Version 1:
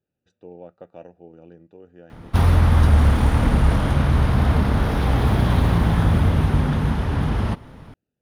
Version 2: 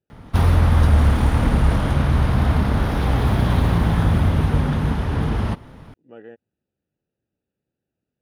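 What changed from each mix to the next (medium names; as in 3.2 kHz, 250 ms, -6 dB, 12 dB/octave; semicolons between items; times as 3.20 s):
background: entry -2.00 s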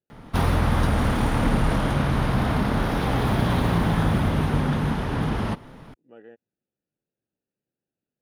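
speech -5.5 dB; master: add peaking EQ 70 Hz -12 dB 1 oct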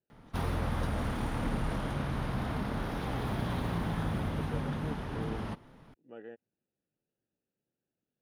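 background -11.5 dB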